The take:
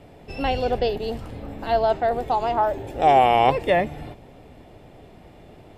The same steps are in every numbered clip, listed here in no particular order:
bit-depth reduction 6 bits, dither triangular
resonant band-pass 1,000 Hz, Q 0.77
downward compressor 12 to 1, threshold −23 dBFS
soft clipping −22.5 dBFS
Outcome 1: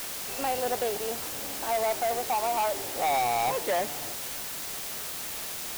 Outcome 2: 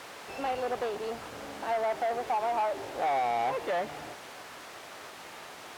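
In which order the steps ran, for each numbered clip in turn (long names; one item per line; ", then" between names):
resonant band-pass, then soft clipping, then downward compressor, then bit-depth reduction
soft clipping, then bit-depth reduction, then downward compressor, then resonant band-pass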